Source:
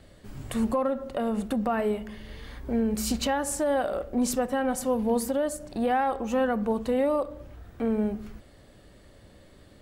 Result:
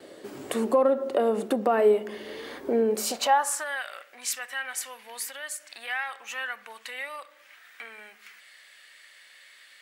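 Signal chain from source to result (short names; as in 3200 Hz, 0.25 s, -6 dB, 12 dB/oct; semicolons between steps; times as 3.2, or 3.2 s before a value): gate with hold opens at -49 dBFS; in parallel at +1.5 dB: compressor, threshold -39 dBFS, peak gain reduction 16.5 dB; on the sum: high-pass sweep 370 Hz -> 2000 Hz, 2.88–3.83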